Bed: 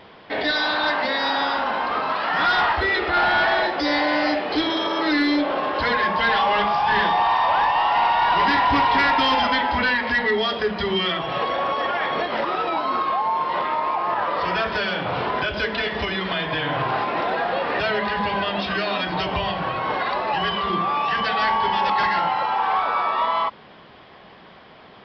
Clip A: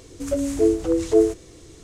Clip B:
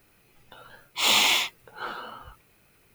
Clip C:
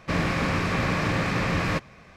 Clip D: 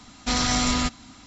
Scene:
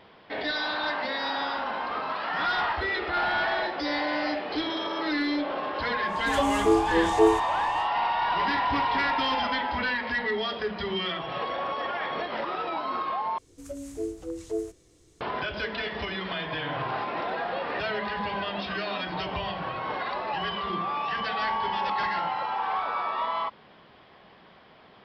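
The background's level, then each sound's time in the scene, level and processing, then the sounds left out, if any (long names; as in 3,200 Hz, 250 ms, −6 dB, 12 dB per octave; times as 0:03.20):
bed −7.5 dB
0:06.06: mix in A −3.5 dB, fades 0.10 s
0:13.38: overwrite with A −14.5 dB + high-shelf EQ 7,500 Hz +4.5 dB
not used: B, C, D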